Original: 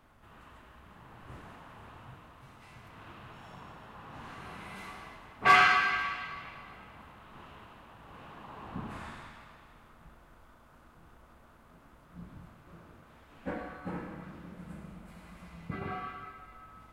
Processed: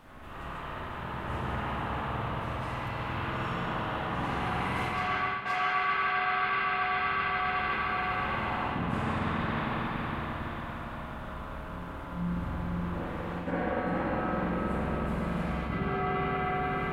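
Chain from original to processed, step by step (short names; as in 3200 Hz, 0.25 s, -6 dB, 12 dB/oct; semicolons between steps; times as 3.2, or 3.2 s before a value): reverse echo 0.523 s -16 dB; reverb RT60 5.5 s, pre-delay 46 ms, DRR -9.5 dB; reverse; compressor 10:1, threshold -34 dBFS, peak gain reduction 23.5 dB; reverse; gain +7.5 dB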